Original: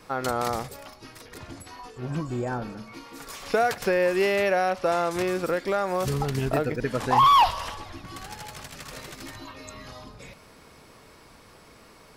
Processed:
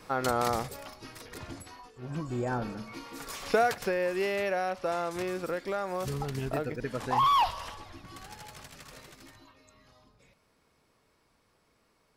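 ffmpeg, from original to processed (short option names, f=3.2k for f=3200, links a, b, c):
-af "volume=9.5dB,afade=t=out:st=1.51:d=0.4:silence=0.316228,afade=t=in:st=1.91:d=0.72:silence=0.298538,afade=t=out:st=3.45:d=0.5:silence=0.473151,afade=t=out:st=8.63:d=0.99:silence=0.281838"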